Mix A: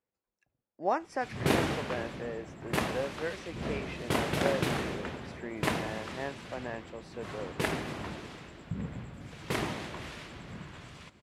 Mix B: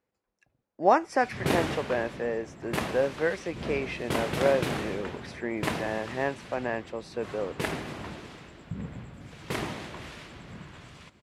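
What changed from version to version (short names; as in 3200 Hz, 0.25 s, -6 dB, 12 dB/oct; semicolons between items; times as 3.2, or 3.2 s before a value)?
speech +8.5 dB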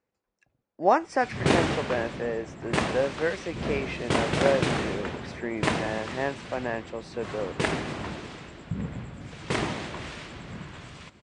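background +4.5 dB; master: add steep low-pass 9400 Hz 72 dB/oct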